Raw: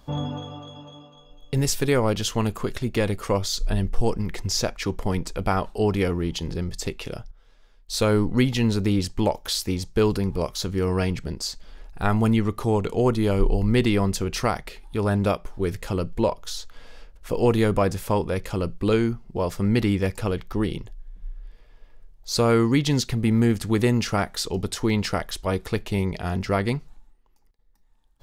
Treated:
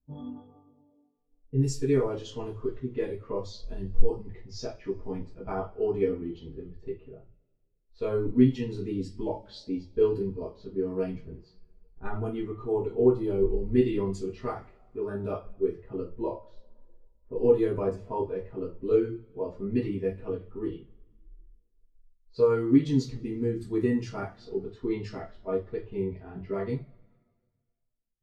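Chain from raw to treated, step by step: low-pass opened by the level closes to 570 Hz, open at -18 dBFS; two-slope reverb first 0.35 s, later 2.6 s, from -22 dB, DRR -7 dB; spectral expander 1.5:1; gain -8.5 dB

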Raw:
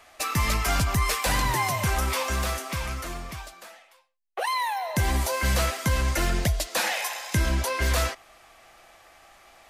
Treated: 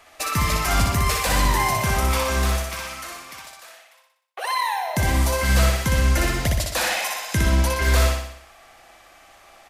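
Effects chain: 2.63–4.49 HPF 980 Hz 6 dB/oct; on a send: feedback echo 61 ms, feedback 54%, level -3.5 dB; on the sum: gain +1.5 dB

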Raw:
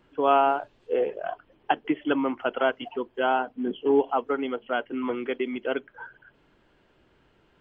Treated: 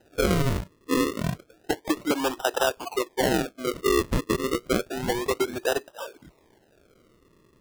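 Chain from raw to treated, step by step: steep high-pass 300 Hz 48 dB/oct; compressor 4:1, threshold -25 dBFS, peak gain reduction 8.5 dB; decimation with a swept rate 39×, swing 100% 0.3 Hz; gain +5 dB

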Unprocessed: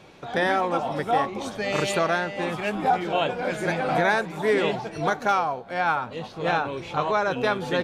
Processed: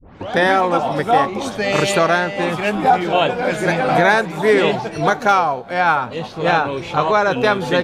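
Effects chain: tape start at the beginning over 0.32 s; ending taper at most 390 dB/s; gain +8 dB

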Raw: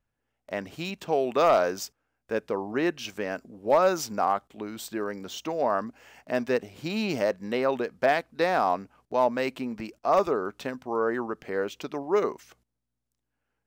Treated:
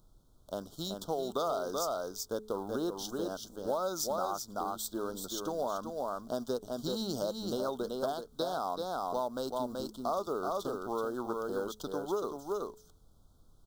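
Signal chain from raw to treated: G.711 law mismatch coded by A; added noise brown -58 dBFS; high shelf 3500 Hz +10 dB; echo 0.38 s -5.5 dB; compressor, threshold -26 dBFS, peak gain reduction 10 dB; elliptic band-stop 1400–3400 Hz, stop band 40 dB; de-hum 214.6 Hz, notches 2; gain -3 dB

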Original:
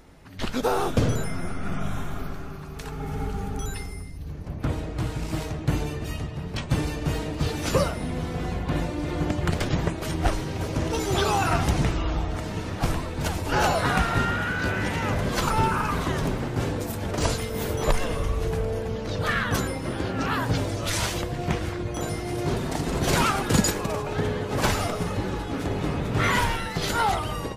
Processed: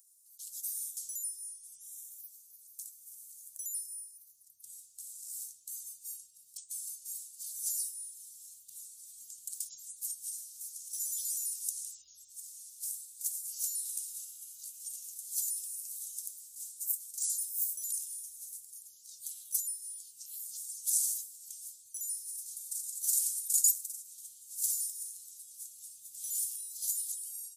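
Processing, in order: inverse Chebyshev high-pass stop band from 2000 Hz, stop band 70 dB; gain +8.5 dB

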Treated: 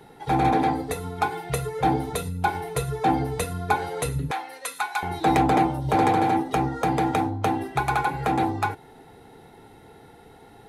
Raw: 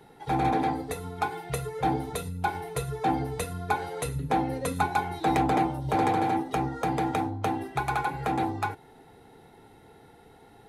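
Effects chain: 4.31–5.03 HPF 1200 Hz 12 dB/oct; gain +4.5 dB

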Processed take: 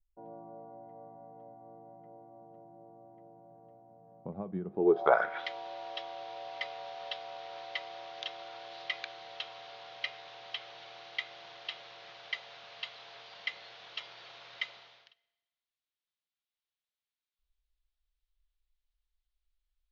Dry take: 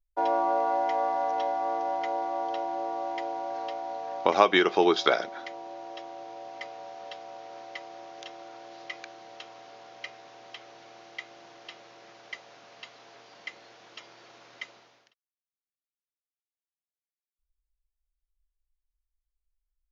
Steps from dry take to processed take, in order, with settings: on a send at -20 dB: reverb RT60 1.2 s, pre-delay 5 ms; on the sum: low-pass sweep 190 Hz -> 3700 Hz, 4.7–5.46; bell 290 Hz -13 dB 0.96 oct

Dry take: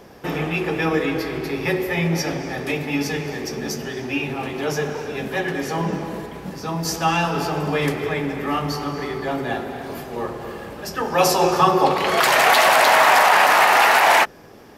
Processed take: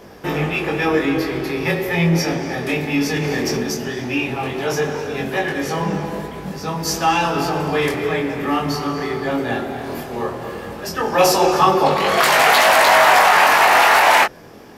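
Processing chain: chorus 0.16 Hz, delay 20 ms, depth 5.3 ms; in parallel at -6 dB: soft clip -19.5 dBFS, distortion -9 dB; 3.16–3.63 on the sum: fast leveller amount 100%; gain +3 dB

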